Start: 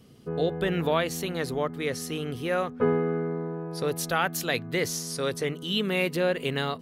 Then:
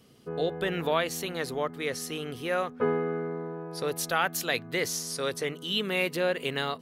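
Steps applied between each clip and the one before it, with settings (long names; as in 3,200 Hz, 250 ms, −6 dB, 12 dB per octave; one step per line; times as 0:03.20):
low-shelf EQ 280 Hz −8.5 dB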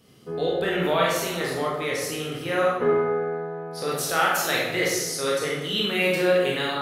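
convolution reverb RT60 1.1 s, pre-delay 18 ms, DRR −4.5 dB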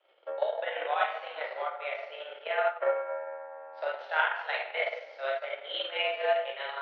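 transient designer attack +11 dB, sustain −9 dB
single-sideband voice off tune +130 Hz 380–3,100 Hz
level −8.5 dB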